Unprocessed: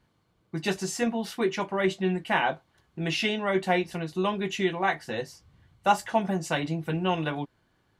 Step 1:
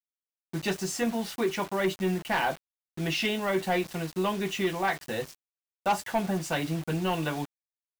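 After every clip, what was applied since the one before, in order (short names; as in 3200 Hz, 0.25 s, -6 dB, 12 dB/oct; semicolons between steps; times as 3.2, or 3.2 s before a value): bit-crush 7-bit; soft clip -18.5 dBFS, distortion -15 dB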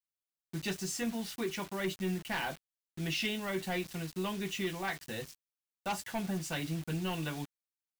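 bell 700 Hz -8 dB 2.5 oct; gain -3 dB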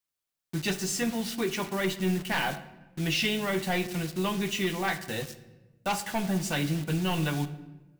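shoebox room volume 650 m³, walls mixed, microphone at 0.41 m; gain +6.5 dB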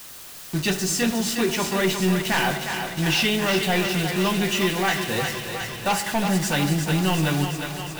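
zero-crossing step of -37.5 dBFS; notch 2200 Hz, Q 27; thinning echo 0.36 s, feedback 73%, high-pass 430 Hz, level -6 dB; gain +5 dB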